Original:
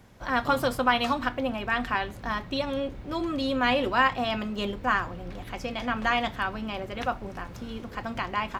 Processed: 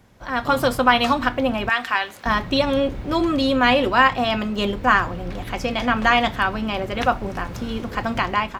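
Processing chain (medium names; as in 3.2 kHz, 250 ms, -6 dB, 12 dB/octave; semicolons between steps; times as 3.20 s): 1.69–2.26 s: high-pass 1.3 kHz 6 dB/octave; level rider gain up to 10 dB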